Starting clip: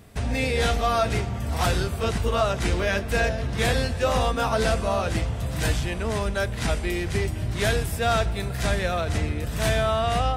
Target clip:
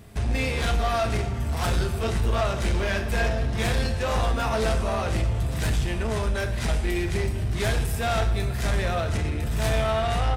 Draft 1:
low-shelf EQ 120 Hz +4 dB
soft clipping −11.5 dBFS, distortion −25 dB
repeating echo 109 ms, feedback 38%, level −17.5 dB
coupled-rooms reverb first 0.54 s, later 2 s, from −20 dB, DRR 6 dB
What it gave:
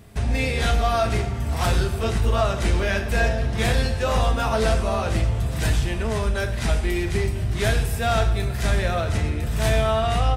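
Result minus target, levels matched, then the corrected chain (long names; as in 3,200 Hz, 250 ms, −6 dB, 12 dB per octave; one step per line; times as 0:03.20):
soft clipping: distortion −13 dB
low-shelf EQ 120 Hz +4 dB
soft clipping −21 dBFS, distortion −12 dB
repeating echo 109 ms, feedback 38%, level −17.5 dB
coupled-rooms reverb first 0.54 s, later 2 s, from −20 dB, DRR 6 dB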